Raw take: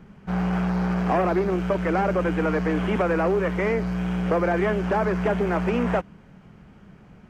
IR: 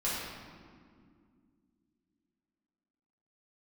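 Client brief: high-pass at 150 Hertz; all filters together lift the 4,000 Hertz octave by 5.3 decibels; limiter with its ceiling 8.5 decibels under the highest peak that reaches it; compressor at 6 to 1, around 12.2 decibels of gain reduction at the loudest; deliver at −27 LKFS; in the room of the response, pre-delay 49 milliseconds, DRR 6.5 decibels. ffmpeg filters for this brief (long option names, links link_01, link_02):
-filter_complex "[0:a]highpass=150,equalizer=frequency=4000:width_type=o:gain=8,acompressor=threshold=-32dB:ratio=6,alimiter=level_in=6.5dB:limit=-24dB:level=0:latency=1,volume=-6.5dB,asplit=2[link_01][link_02];[1:a]atrim=start_sample=2205,adelay=49[link_03];[link_02][link_03]afir=irnorm=-1:irlink=0,volume=-14dB[link_04];[link_01][link_04]amix=inputs=2:normalize=0,volume=11.5dB"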